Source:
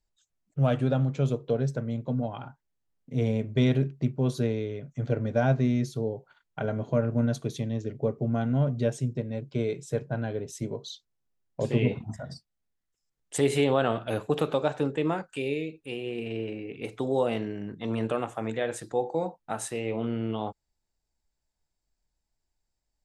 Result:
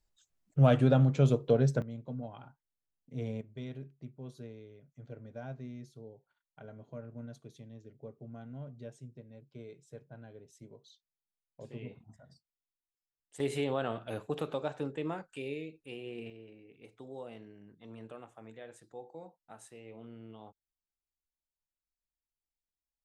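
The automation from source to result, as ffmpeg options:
-af "asetnsamples=n=441:p=0,asendcmd='1.82 volume volume -11dB;3.41 volume volume -19.5dB;13.4 volume volume -9dB;16.3 volume volume -19dB',volume=1dB"

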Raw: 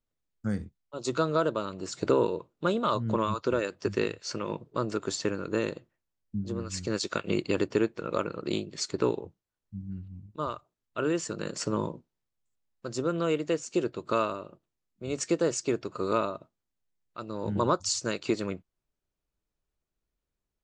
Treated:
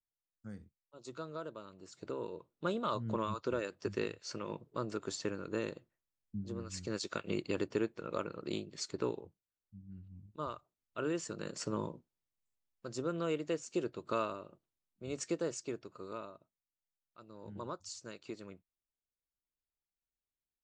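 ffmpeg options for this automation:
-af "volume=-1dB,afade=t=in:st=2.18:d=0.48:silence=0.354813,afade=t=out:st=8.84:d=0.99:silence=0.473151,afade=t=in:st=9.83:d=0.39:silence=0.446684,afade=t=out:st=15.08:d=1.01:silence=0.334965"

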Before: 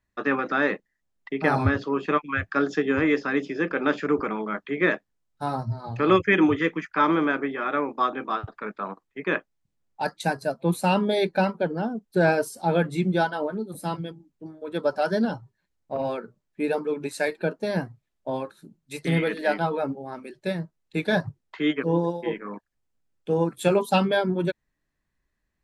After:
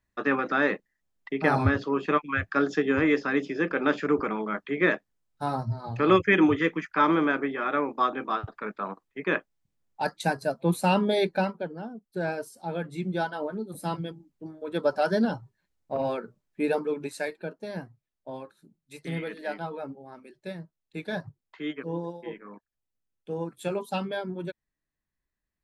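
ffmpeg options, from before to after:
-af "volume=8.5dB,afade=t=out:st=11.2:d=0.51:silence=0.354813,afade=t=in:st=12.8:d=1.3:silence=0.334965,afade=t=out:st=16.76:d=0.66:silence=0.354813"

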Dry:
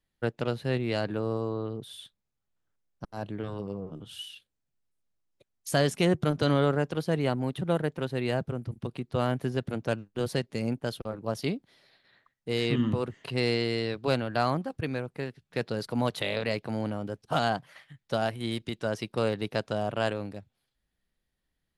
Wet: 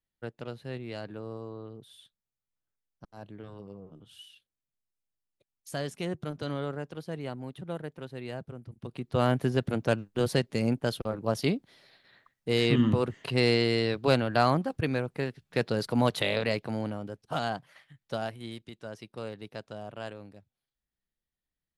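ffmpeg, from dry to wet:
-af "volume=3dB,afade=t=in:st=8.77:d=0.5:silence=0.237137,afade=t=out:st=16.18:d=0.95:silence=0.421697,afade=t=out:st=18.14:d=0.5:silence=0.473151"

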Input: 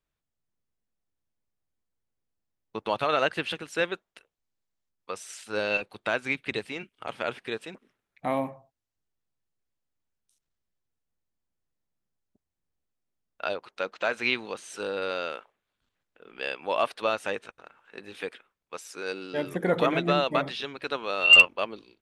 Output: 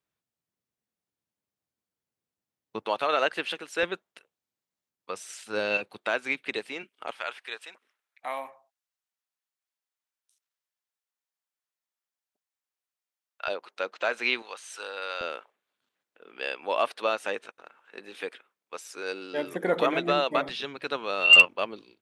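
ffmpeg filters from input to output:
-af "asetnsamples=n=441:p=0,asendcmd='2.86 highpass f 320;3.83 highpass f 130;5.97 highpass f 290;7.11 highpass f 910;13.48 highpass f 310;14.42 highpass f 800;15.21 highpass f 260;20.49 highpass f 110',highpass=120"

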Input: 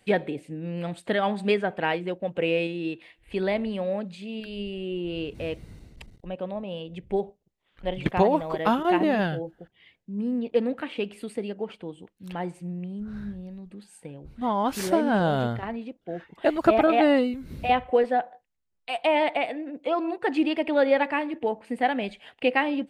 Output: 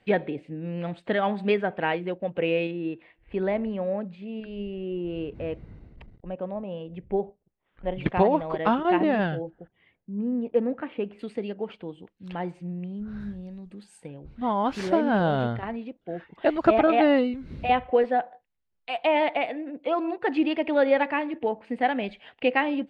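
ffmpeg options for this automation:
-af "asetnsamples=n=441:p=0,asendcmd='2.71 lowpass f 1800;7.98 lowpass f 3100;9.5 lowpass f 1600;11.19 lowpass f 4100;13.2 lowpass f 8600;14.08 lowpass f 3800',lowpass=3.1k"

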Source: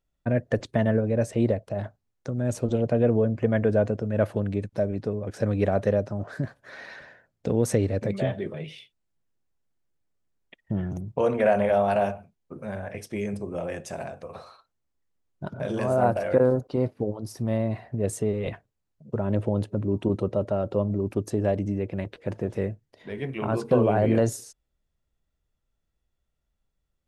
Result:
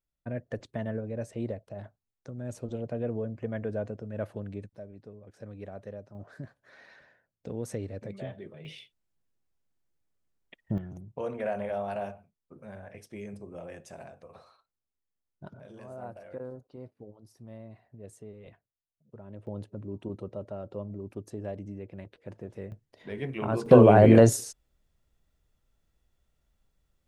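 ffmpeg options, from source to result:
-af "asetnsamples=n=441:p=0,asendcmd='4.75 volume volume -19dB;6.15 volume volume -12.5dB;8.65 volume volume -2dB;10.78 volume volume -11dB;15.6 volume volume -20dB;19.47 volume volume -12.5dB;22.72 volume volume -2.5dB;23.66 volume volume 5.5dB',volume=-11dB"

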